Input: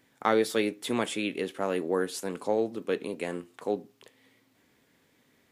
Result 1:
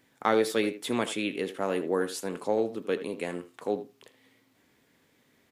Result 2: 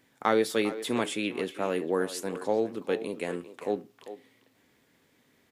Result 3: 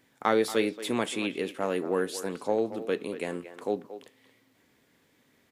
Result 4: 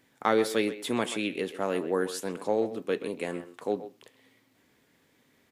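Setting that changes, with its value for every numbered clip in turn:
speakerphone echo, time: 80 ms, 400 ms, 230 ms, 130 ms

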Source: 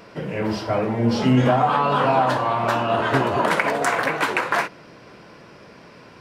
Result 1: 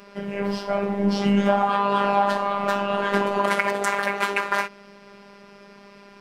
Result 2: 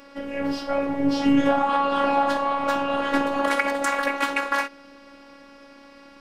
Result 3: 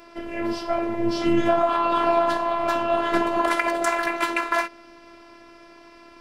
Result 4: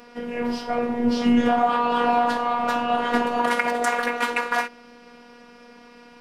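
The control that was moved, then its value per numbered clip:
robot voice, frequency: 200 Hz, 280 Hz, 340 Hz, 240 Hz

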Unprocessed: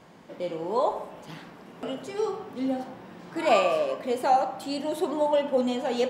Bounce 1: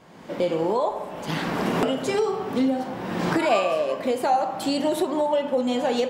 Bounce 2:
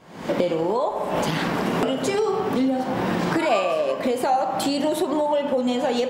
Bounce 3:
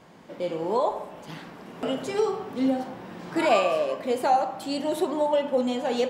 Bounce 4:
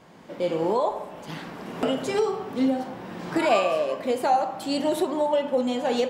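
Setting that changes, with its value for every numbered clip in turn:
recorder AGC, rising by: 33 dB/s, 80 dB/s, 5.1 dB/s, 13 dB/s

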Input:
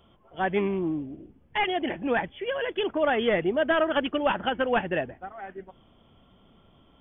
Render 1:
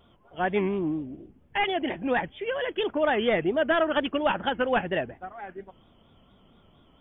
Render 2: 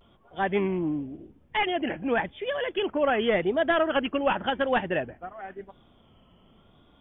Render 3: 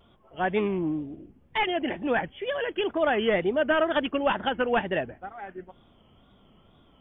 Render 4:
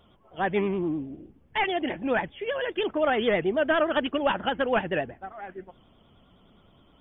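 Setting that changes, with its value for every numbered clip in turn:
vibrato, rate: 4.3 Hz, 0.91 Hz, 2.1 Hz, 9.6 Hz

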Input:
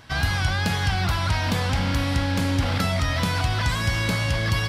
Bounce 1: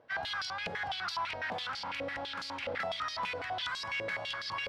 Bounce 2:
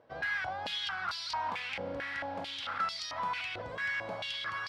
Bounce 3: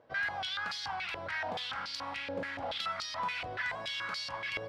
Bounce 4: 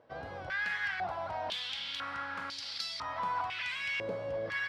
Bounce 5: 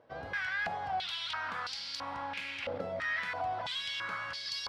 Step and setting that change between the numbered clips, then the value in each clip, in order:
step-sequenced band-pass, rate: 12 Hz, 4.5 Hz, 7 Hz, 2 Hz, 3 Hz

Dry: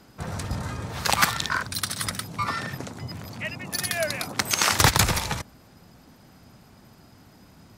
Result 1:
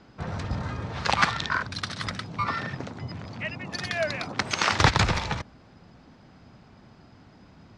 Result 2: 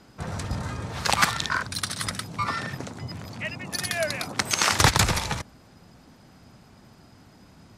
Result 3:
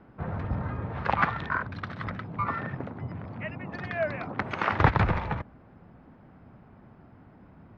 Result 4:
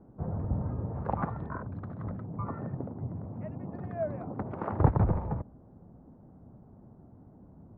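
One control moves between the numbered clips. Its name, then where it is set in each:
Bessel low-pass, frequency: 3.9 kHz, 10 kHz, 1.5 kHz, 580 Hz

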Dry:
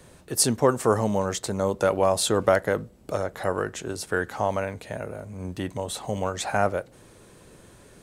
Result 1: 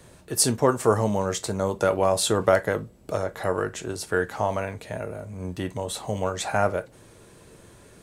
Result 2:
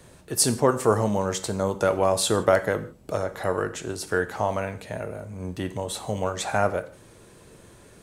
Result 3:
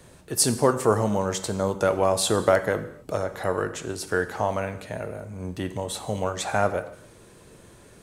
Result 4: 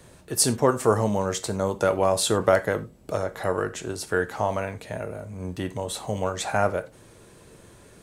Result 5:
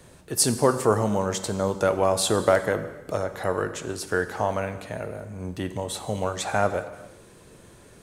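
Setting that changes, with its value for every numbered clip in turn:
gated-style reverb, gate: 80 ms, 190 ms, 300 ms, 120 ms, 460 ms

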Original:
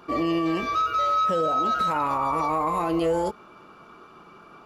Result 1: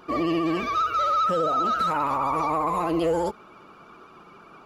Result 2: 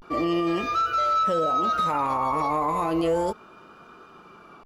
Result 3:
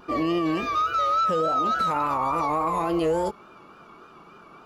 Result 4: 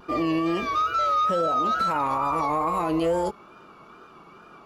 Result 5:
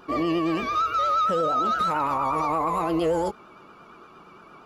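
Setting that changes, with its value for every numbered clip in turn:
vibrato, rate: 15 Hz, 0.33 Hz, 3.5 Hz, 2.3 Hz, 8.7 Hz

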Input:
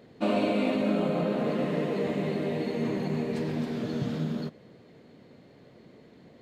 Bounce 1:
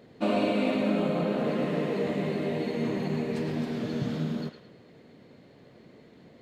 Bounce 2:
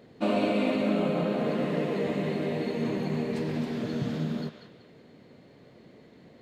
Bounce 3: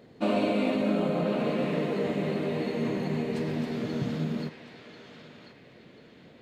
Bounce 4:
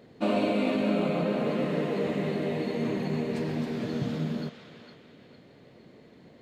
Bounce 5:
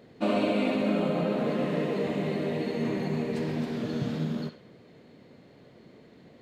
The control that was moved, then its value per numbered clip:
band-passed feedback delay, time: 108 ms, 189 ms, 1040 ms, 456 ms, 65 ms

